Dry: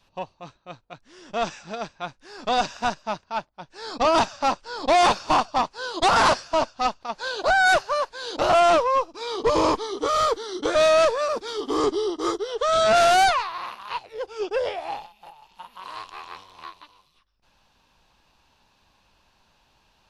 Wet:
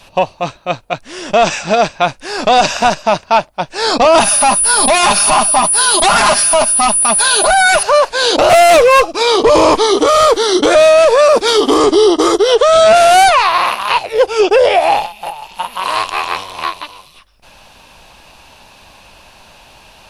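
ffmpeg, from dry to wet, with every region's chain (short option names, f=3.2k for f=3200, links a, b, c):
-filter_complex "[0:a]asettb=1/sr,asplit=3[a][b][c];[a]atrim=end=4.204[d];[b]atrim=start=4.2:end=7.83,asetpts=PTS-STARTPTS,afade=t=in:d=0.004:c=qsin,afade=t=out:st=3.626:d=0.004:c=qsin,equalizer=f=500:w=2:g=-9.5,aecho=1:1:4.9:0.71,atrim=end_sample=160083,aeval=exprs='val(0)+0.0112*sin(2*PI*9800*n/s)':c=same[e];[c]atrim=start=7.826[f];[d][e]acrossfade=d=0.004:c1=hsin:c2=qsin[g];[g][f]acrossfade=d=0.004:c1=qsin:c2=hsin,asettb=1/sr,asplit=3[h][i][j];[h]atrim=end=8.494[k];[i]atrim=start=8.49:end=9.12,asetpts=PTS-STARTPTS,afade=t=in:d=0.004:c=qsin,afade=t=out:st=0.626:d=0.004:c=qsin,asuperstop=centerf=940:order=20:qfactor=4.5,asoftclip=type=hard:threshold=-24.5dB[l];[j]atrim=start=9.116[m];[k][l]acrossfade=d=0.004:c1=hsin:c2=qsin[n];[n][m]acrossfade=d=0.004:c1=qsin:c2=hsin,equalizer=f=630:t=o:w=0.67:g=6,equalizer=f=2.5k:t=o:w=0.67:g=5,equalizer=f=10k:t=o:w=0.67:g=11,acompressor=threshold=-16dB:ratio=6,alimiter=level_in=20dB:limit=-1dB:release=50:level=0:latency=1,volume=-1dB"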